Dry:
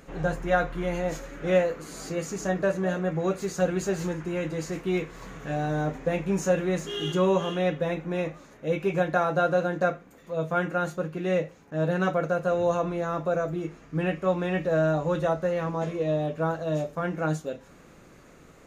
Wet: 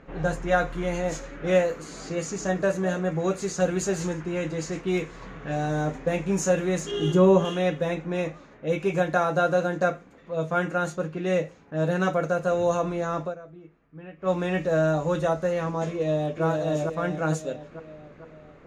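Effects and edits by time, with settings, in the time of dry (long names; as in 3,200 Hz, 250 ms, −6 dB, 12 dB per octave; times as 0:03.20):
0:06.91–0:07.45: tilt shelving filter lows +6 dB, about 1,100 Hz
0:13.22–0:14.31: duck −16.5 dB, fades 0.13 s
0:15.91–0:16.44: delay throw 450 ms, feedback 55%, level −4 dB
whole clip: dynamic equaliser 7,300 Hz, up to +6 dB, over −55 dBFS, Q 1.1; low-pass that shuts in the quiet parts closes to 2,400 Hz, open at −22 dBFS; level +1 dB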